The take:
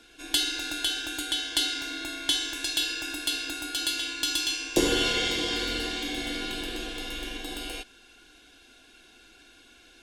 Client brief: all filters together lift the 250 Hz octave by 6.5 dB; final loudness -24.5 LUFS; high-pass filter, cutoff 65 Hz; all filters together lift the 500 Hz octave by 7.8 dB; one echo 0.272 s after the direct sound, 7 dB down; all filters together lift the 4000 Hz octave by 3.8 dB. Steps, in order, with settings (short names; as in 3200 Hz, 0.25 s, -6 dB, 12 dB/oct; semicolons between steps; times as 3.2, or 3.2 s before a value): HPF 65 Hz; bell 250 Hz +5 dB; bell 500 Hz +8 dB; bell 4000 Hz +4.5 dB; echo 0.272 s -7 dB; gain -1 dB